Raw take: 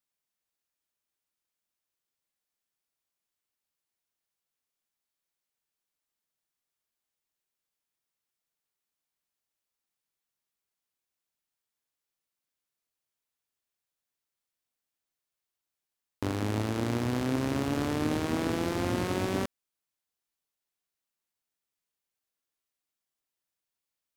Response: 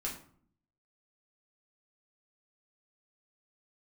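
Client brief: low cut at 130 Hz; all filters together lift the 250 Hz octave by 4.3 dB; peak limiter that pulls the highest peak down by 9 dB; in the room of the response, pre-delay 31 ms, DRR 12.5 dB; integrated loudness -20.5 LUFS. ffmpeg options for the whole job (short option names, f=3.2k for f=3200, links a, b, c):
-filter_complex "[0:a]highpass=130,equalizer=f=250:t=o:g=5.5,alimiter=limit=-24dB:level=0:latency=1,asplit=2[a][b];[1:a]atrim=start_sample=2205,adelay=31[c];[b][c]afir=irnorm=-1:irlink=0,volume=-14dB[d];[a][d]amix=inputs=2:normalize=0,volume=12.5dB"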